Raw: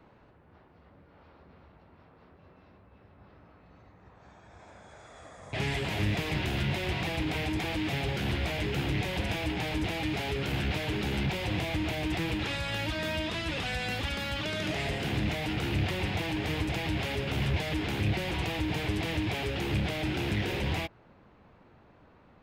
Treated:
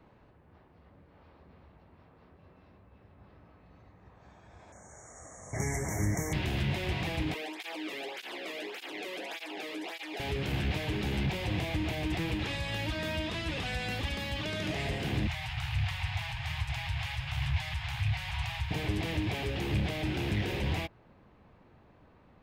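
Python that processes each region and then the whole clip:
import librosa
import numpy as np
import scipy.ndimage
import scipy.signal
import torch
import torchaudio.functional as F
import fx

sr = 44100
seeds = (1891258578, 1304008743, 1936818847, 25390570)

y = fx.chain(x, sr, fx.brickwall_bandstop(low_hz=2300.0, high_hz=5400.0),
    fx.high_shelf_res(hz=5000.0, db=8.5, q=3.0),
    fx.doubler(ms=26.0, db=-12.0), at=(4.72, 6.33))
y = fx.chain(y, sr, fx.highpass(hz=300.0, slope=24),
    fx.flanger_cancel(hz=1.7, depth_ms=1.4), at=(7.34, 10.2))
y = fx.chain(y, sr, fx.cheby2_bandstop(low_hz=220.0, high_hz=460.0, order=4, stop_db=50),
    fx.high_shelf(hz=11000.0, db=-6.0), at=(15.27, 18.71))
y = fx.low_shelf(y, sr, hz=160.0, db=3.5)
y = fx.notch(y, sr, hz=1400.0, q=17.0)
y = y * 10.0 ** (-2.5 / 20.0)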